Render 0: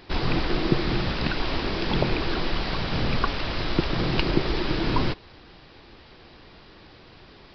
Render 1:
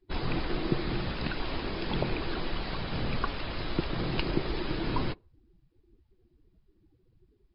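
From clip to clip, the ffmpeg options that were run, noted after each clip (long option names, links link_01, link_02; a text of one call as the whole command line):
ffmpeg -i in.wav -af "afftdn=noise_reduction=30:noise_floor=-38,volume=-6.5dB" out.wav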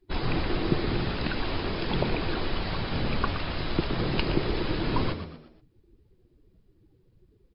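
ffmpeg -i in.wav -filter_complex "[0:a]asplit=5[link_01][link_02][link_03][link_04][link_05];[link_02]adelay=119,afreqshift=76,volume=-10dB[link_06];[link_03]adelay=238,afreqshift=152,volume=-18.4dB[link_07];[link_04]adelay=357,afreqshift=228,volume=-26.8dB[link_08];[link_05]adelay=476,afreqshift=304,volume=-35.2dB[link_09];[link_01][link_06][link_07][link_08][link_09]amix=inputs=5:normalize=0,volume=3dB" out.wav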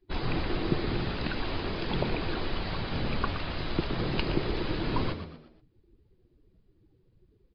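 ffmpeg -i in.wav -af "aresample=11025,aresample=44100,volume=-2.5dB" out.wav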